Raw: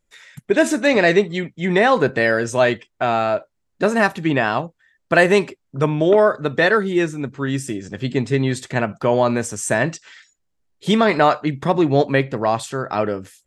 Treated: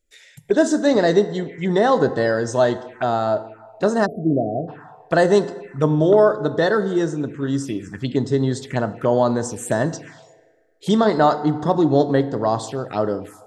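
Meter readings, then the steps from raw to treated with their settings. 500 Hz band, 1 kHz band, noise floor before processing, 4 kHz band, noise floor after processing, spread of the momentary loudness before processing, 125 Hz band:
0.0 dB, −1.5 dB, −72 dBFS, −4.0 dB, −52 dBFS, 9 LU, −0.5 dB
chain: feedback delay network reverb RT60 1.7 s, low-frequency decay 0.7×, high-frequency decay 0.5×, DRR 11.5 dB
phaser swept by the level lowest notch 160 Hz, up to 2,400 Hz, full sweep at −18.5 dBFS
time-frequency box erased 0:04.06–0:04.68, 750–10,000 Hz

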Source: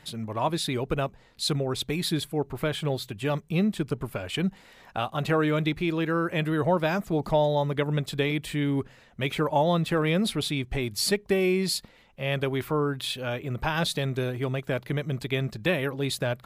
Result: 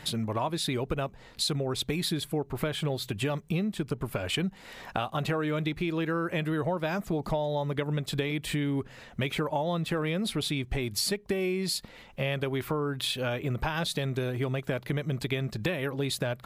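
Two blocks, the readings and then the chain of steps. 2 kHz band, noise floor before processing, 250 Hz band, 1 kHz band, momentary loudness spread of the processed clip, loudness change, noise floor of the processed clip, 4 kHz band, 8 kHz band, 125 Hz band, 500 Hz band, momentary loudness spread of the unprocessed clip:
−3.0 dB, −56 dBFS, −3.5 dB, −4.5 dB, 4 LU, −3.0 dB, −52 dBFS, −1.5 dB, −1.0 dB, −2.5 dB, −4.0 dB, 7 LU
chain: downward compressor 6 to 1, threshold −35 dBFS, peak gain reduction 15.5 dB
level +7.5 dB

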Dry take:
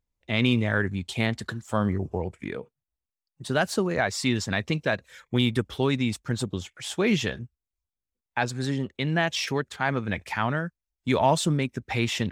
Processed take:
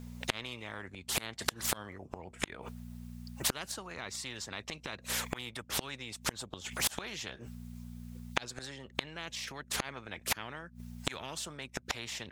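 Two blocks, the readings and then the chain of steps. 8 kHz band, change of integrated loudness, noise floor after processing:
+0.5 dB, −11.0 dB, −57 dBFS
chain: hum with harmonics 60 Hz, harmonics 4, −48 dBFS −4 dB per octave
gate with flip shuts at −23 dBFS, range −37 dB
every bin compressed towards the loudest bin 4 to 1
level +7 dB

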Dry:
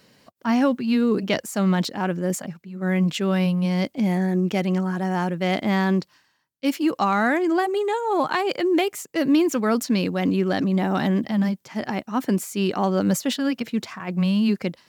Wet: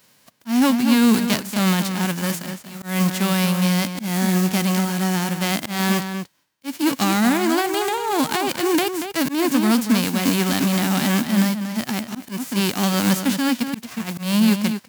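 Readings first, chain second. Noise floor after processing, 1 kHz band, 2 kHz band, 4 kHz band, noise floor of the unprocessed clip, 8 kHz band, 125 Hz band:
−56 dBFS, +1.0 dB, +3.5 dB, +7.0 dB, −64 dBFS, +9.0 dB, +2.0 dB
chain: spectral envelope flattened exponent 0.3
dynamic equaliser 240 Hz, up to +6 dB, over −35 dBFS, Q 2.9
slap from a distant wall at 40 metres, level −8 dB
volume swells 170 ms

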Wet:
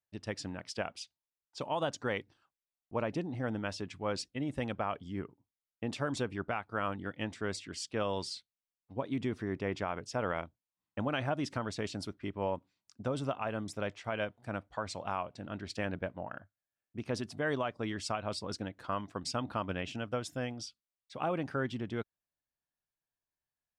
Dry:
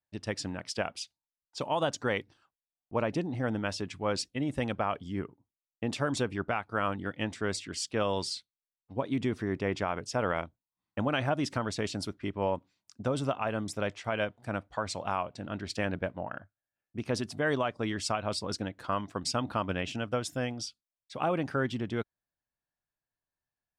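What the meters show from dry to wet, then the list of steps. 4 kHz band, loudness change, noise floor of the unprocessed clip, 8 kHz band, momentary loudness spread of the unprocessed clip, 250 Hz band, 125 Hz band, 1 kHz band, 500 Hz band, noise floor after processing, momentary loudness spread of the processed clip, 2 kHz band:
−5.0 dB, −4.0 dB, below −85 dBFS, −6.0 dB, 8 LU, −4.0 dB, −4.0 dB, −4.0 dB, −4.0 dB, below −85 dBFS, 7 LU, −4.0 dB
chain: high-shelf EQ 7,100 Hz −4.5 dB
level −4 dB

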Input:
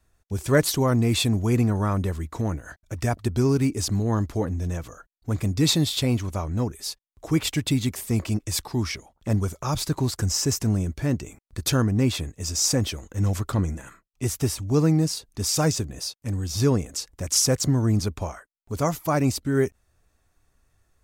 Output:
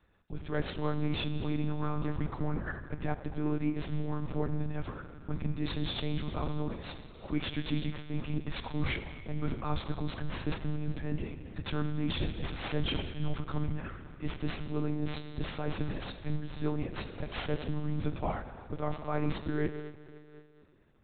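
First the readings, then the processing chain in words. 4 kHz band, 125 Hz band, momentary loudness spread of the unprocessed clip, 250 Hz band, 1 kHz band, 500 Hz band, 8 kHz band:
−12.5 dB, −11.5 dB, 10 LU, −10.0 dB, −7.5 dB, −11.0 dB, below −40 dB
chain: stylus tracing distortion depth 0.19 ms
high-pass filter 47 Hz 24 dB per octave
reversed playback
downward compressor 20 to 1, threshold −28 dBFS, peak gain reduction 16 dB
reversed playback
on a send: tape delay 78 ms, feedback 63%, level −21 dB, low-pass 2,400 Hz
on the sum: four-comb reverb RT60 2.4 s, combs from 27 ms, DRR 7.5 dB
one-pitch LPC vocoder at 8 kHz 150 Hz
amplitude modulation by smooth noise, depth 55%
level +3 dB

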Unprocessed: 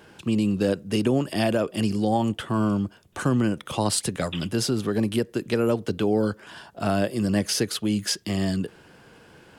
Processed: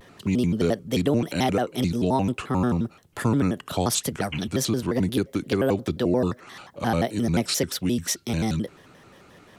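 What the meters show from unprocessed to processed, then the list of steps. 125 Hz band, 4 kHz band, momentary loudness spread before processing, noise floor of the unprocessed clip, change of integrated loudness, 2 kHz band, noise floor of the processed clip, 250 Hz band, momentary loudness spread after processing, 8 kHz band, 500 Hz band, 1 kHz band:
+1.0 dB, −1.0 dB, 5 LU, −53 dBFS, 0.0 dB, −0.5 dB, −53 dBFS, −0.5 dB, 5 LU, +1.0 dB, −0.5 dB, +1.5 dB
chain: pitch modulation by a square or saw wave square 5.7 Hz, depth 250 cents

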